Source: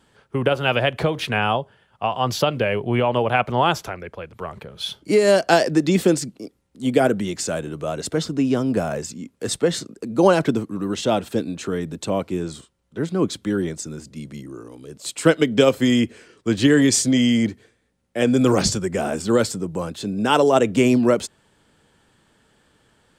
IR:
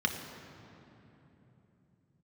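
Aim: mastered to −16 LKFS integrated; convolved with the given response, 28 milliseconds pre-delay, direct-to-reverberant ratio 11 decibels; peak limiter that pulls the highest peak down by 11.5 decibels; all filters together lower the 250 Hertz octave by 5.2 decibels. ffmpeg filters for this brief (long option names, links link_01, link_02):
-filter_complex "[0:a]equalizer=frequency=250:width_type=o:gain=-6.5,alimiter=limit=-14.5dB:level=0:latency=1,asplit=2[link_01][link_02];[1:a]atrim=start_sample=2205,adelay=28[link_03];[link_02][link_03]afir=irnorm=-1:irlink=0,volume=-19dB[link_04];[link_01][link_04]amix=inputs=2:normalize=0,volume=10dB"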